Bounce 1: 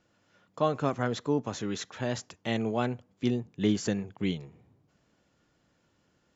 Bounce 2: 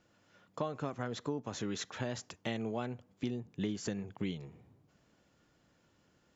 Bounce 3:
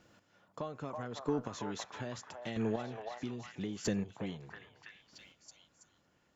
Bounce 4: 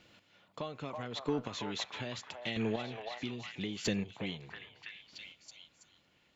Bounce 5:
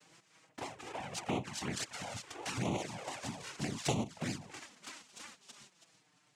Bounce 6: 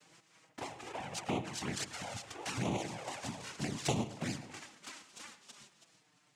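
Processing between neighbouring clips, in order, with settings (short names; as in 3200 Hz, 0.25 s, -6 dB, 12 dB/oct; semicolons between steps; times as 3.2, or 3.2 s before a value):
compressor 6:1, threshold -33 dBFS, peak gain reduction 12.5 dB
chopper 0.78 Hz, depth 65%, duty 15%; delay with a stepping band-pass 0.327 s, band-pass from 840 Hz, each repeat 0.7 oct, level -1 dB; tube stage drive 27 dB, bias 0.25; gain +6 dB
band shelf 3000 Hz +9.5 dB 1.3 oct
minimum comb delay 1.4 ms; noise vocoder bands 4; envelope flanger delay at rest 7.1 ms, full sweep at -34.5 dBFS; gain +4.5 dB
reverb RT60 0.50 s, pre-delay 99 ms, DRR 13.5 dB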